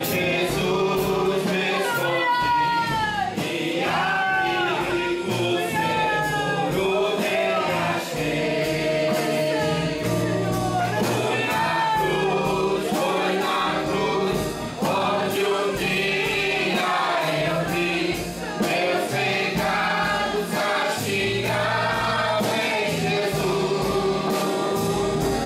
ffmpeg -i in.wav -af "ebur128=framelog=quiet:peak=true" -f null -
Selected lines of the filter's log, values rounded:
Integrated loudness:
  I:         -22.4 LUFS
  Threshold: -32.4 LUFS
Loudness range:
  LRA:         0.9 LU
  Threshold: -42.4 LUFS
  LRA low:   -22.8 LUFS
  LRA high:  -22.0 LUFS
True peak:
  Peak:      -10.4 dBFS